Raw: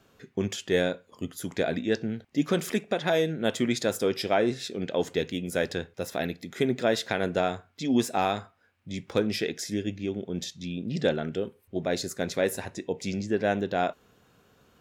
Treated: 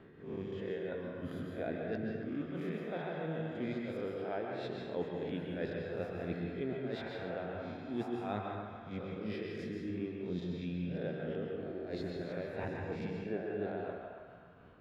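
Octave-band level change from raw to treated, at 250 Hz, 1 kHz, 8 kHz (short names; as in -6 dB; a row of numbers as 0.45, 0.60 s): -9.5 dB, -12.5 dB, under -30 dB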